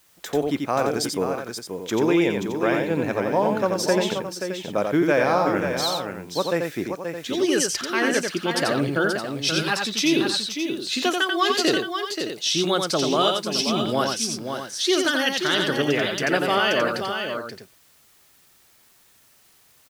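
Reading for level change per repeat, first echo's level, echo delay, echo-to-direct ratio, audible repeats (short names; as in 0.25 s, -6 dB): no steady repeat, -4.5 dB, 88 ms, -2.0 dB, 3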